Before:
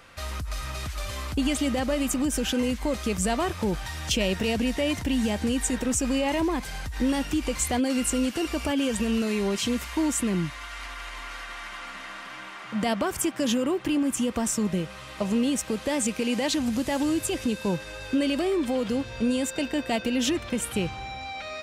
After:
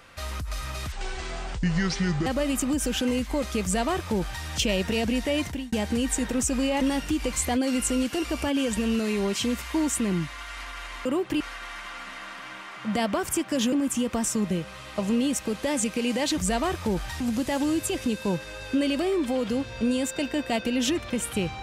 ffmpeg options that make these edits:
ffmpeg -i in.wav -filter_complex "[0:a]asplit=10[link_01][link_02][link_03][link_04][link_05][link_06][link_07][link_08][link_09][link_10];[link_01]atrim=end=0.924[link_11];[link_02]atrim=start=0.92:end=1.78,asetpts=PTS-STARTPTS,asetrate=28224,aresample=44100,atrim=end_sample=59259,asetpts=PTS-STARTPTS[link_12];[link_03]atrim=start=1.776:end=5.24,asetpts=PTS-STARTPTS,afade=type=out:start_time=3.174:duration=0.29[link_13];[link_04]atrim=start=5.24:end=6.332,asetpts=PTS-STARTPTS,afade=type=in:duration=0.004:curve=hsin[link_14];[link_05]atrim=start=7.038:end=11.282[link_15];[link_06]atrim=start=13.598:end=13.952[link_16];[link_07]atrim=start=11.278:end=13.602[link_17];[link_08]atrim=start=13.948:end=16.602[link_18];[link_09]atrim=start=3.138:end=3.972[link_19];[link_10]atrim=start=16.598[link_20];[link_11][link_12]acrossfade=duration=0.004:curve1=hsin:curve2=hsin[link_21];[link_13][link_14]concat=n=2:v=0:a=1[link_22];[link_21][link_22]acrossfade=duration=0.004:curve1=hsin:curve2=hsin[link_23];[link_23][link_15]acrossfade=duration=0.004:curve1=hsin:curve2=hsin[link_24];[link_24][link_16]acrossfade=duration=0.004:curve1=hsin:curve2=hsin[link_25];[link_25][link_17]acrossfade=duration=0.004:curve1=hsin:curve2=hsin[link_26];[link_26][link_18]acrossfade=duration=0.004:curve1=hsin:curve2=hsin[link_27];[link_27][link_19]acrossfade=duration=0.004:curve1=hsin:curve2=hsin[link_28];[link_28][link_20]acrossfade=duration=0.004:curve1=hsin:curve2=hsin" out.wav

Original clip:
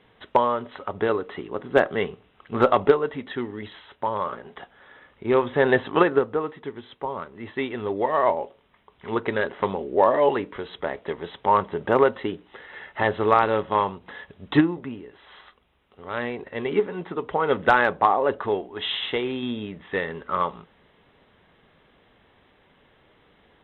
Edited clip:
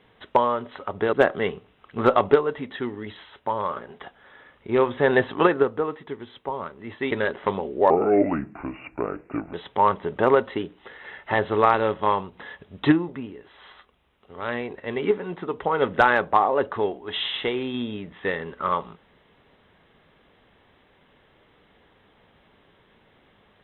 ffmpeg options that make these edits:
ffmpeg -i in.wav -filter_complex "[0:a]asplit=5[link_01][link_02][link_03][link_04][link_05];[link_01]atrim=end=1.132[link_06];[link_02]atrim=start=1.688:end=7.672[link_07];[link_03]atrim=start=9.268:end=10.064[link_08];[link_04]atrim=start=10.06:end=11.22,asetpts=PTS-STARTPTS,asetrate=31311,aresample=44100[link_09];[link_05]atrim=start=11.216[link_10];[link_06][link_07]acrossfade=duration=0.004:curve1=hsin:curve2=hsin[link_11];[link_11][link_08]acrossfade=duration=0.004:curve1=hsin:curve2=hsin[link_12];[link_12][link_09]acrossfade=duration=0.004:curve1=hsin:curve2=hsin[link_13];[link_13][link_10]acrossfade=duration=0.004:curve1=hsin:curve2=hsin" out.wav

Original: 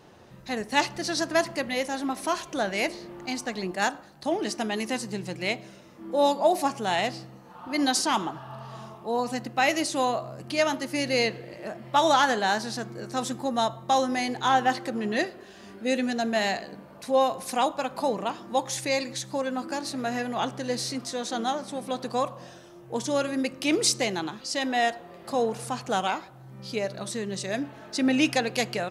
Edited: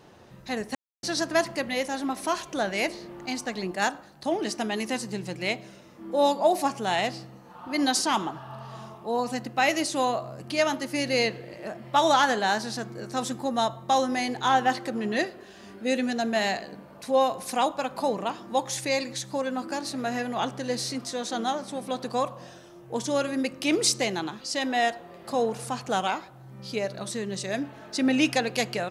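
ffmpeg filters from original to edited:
ffmpeg -i in.wav -filter_complex "[0:a]asplit=3[link_01][link_02][link_03];[link_01]atrim=end=0.75,asetpts=PTS-STARTPTS,afade=type=out:start_time=0.746:duration=0.004:curve=hsin[link_04];[link_02]atrim=start=0.75:end=1.03,asetpts=PTS-STARTPTS,volume=0[link_05];[link_03]atrim=start=1.03,asetpts=PTS-STARTPTS,afade=type=in:duration=0.004:curve=hsin[link_06];[link_04][link_05][link_06]concat=n=3:v=0:a=1" out.wav

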